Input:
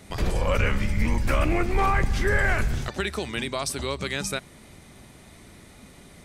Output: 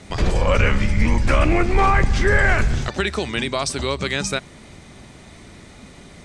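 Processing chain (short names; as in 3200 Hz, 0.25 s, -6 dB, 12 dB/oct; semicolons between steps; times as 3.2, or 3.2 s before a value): LPF 8300 Hz 24 dB/oct; gain +6 dB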